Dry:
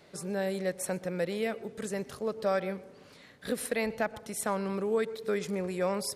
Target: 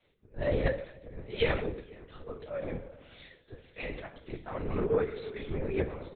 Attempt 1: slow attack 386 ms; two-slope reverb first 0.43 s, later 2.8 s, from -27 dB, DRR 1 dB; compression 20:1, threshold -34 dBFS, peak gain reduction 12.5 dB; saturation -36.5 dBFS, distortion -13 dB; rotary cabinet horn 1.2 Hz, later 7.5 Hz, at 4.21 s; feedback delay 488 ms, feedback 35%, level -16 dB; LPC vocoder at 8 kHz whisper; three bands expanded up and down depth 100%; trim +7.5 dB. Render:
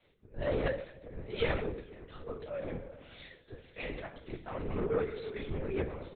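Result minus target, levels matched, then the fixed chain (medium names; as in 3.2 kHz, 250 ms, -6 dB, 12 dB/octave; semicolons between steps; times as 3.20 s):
saturation: distortion +12 dB
slow attack 386 ms; two-slope reverb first 0.43 s, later 2.8 s, from -27 dB, DRR 1 dB; compression 20:1, threshold -34 dBFS, peak gain reduction 12.5 dB; saturation -28 dBFS, distortion -25 dB; rotary cabinet horn 1.2 Hz, later 7.5 Hz, at 4.21 s; feedback delay 488 ms, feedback 35%, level -16 dB; LPC vocoder at 8 kHz whisper; three bands expanded up and down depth 100%; trim +7.5 dB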